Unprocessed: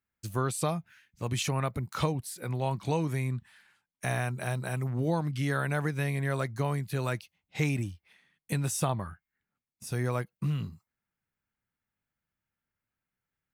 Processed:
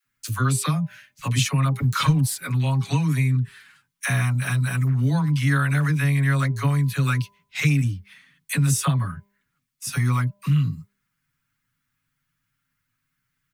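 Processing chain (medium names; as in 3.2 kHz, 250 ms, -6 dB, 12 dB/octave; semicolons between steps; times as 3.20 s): 1.79–2.37 s: waveshaping leveller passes 1; high-order bell 530 Hz -12 dB; comb 7.2 ms, depth 93%; de-hum 200.7 Hz, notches 5; phase dispersion lows, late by 57 ms, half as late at 500 Hz; in parallel at +2.5 dB: compression, threshold -34 dBFS, peak gain reduction 16 dB; on the sum: trim +2.5 dB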